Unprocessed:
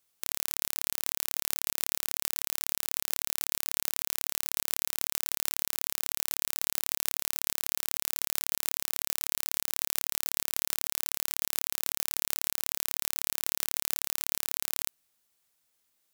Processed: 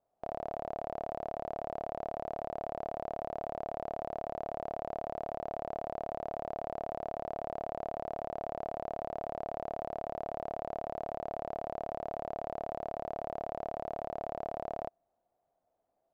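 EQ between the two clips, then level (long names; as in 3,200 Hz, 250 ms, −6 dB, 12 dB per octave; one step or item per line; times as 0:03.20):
low-pass with resonance 680 Hz, resonance Q 7.8
+1.5 dB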